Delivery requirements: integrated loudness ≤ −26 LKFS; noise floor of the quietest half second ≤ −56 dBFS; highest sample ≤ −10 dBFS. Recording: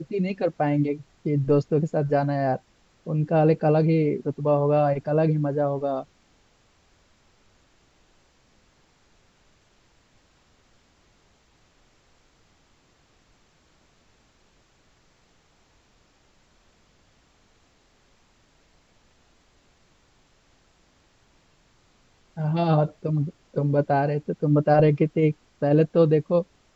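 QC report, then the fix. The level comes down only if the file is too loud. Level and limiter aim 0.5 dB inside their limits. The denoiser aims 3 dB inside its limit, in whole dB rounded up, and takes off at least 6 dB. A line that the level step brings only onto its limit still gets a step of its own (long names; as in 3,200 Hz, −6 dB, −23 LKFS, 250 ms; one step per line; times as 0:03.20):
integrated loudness −23.0 LKFS: out of spec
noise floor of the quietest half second −62 dBFS: in spec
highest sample −7.0 dBFS: out of spec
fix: level −3.5 dB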